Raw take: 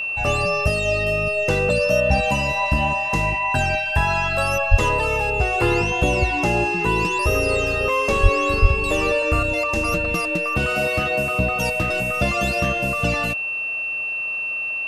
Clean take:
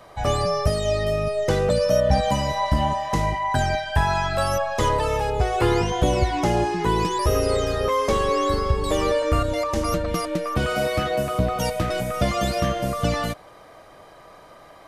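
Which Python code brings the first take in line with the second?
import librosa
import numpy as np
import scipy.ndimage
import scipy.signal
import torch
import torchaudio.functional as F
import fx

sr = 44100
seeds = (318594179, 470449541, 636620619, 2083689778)

y = fx.notch(x, sr, hz=2700.0, q=30.0)
y = fx.highpass(y, sr, hz=140.0, slope=24, at=(4.7, 4.82), fade=0.02)
y = fx.highpass(y, sr, hz=140.0, slope=24, at=(8.22, 8.34), fade=0.02)
y = fx.highpass(y, sr, hz=140.0, slope=24, at=(8.61, 8.73), fade=0.02)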